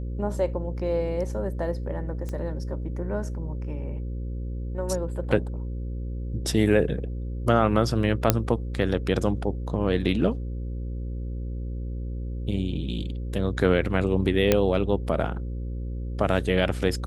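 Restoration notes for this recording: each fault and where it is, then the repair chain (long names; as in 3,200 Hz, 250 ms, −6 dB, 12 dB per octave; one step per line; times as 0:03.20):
mains buzz 60 Hz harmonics 9 −31 dBFS
0:02.29: click −21 dBFS
0:08.30: click −2 dBFS
0:14.52: click −5 dBFS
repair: click removal
hum removal 60 Hz, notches 9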